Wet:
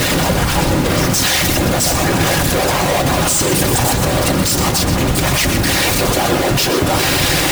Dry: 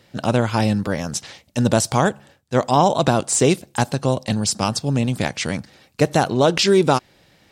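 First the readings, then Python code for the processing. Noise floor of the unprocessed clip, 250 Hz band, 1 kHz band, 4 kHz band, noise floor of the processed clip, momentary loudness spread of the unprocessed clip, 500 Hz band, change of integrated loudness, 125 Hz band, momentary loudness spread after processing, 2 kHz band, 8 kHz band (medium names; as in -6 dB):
-57 dBFS, +3.5 dB, +3.5 dB, +10.0 dB, -16 dBFS, 9 LU, +2.0 dB, +5.5 dB, +5.0 dB, 2 LU, +10.5 dB, +9.5 dB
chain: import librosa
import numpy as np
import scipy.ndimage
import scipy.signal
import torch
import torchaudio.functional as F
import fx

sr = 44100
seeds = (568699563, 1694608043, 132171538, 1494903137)

y = np.sign(x) * np.sqrt(np.mean(np.square(x)))
y = fx.whisperise(y, sr, seeds[0])
y = fx.notch_comb(y, sr, f0_hz=220.0)
y = y + 10.0 ** (-9.0 / 20.0) * np.pad(y, (int(124 * sr / 1000.0), 0))[:len(y)]
y = F.gain(torch.from_numpy(y), 6.0).numpy()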